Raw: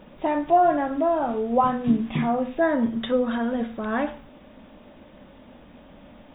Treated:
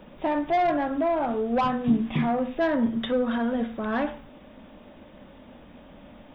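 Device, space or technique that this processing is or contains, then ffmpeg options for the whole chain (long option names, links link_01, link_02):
one-band saturation: -filter_complex "[0:a]acrossover=split=220|3200[link_01][link_02][link_03];[link_02]asoftclip=type=tanh:threshold=-19dB[link_04];[link_01][link_04][link_03]amix=inputs=3:normalize=0"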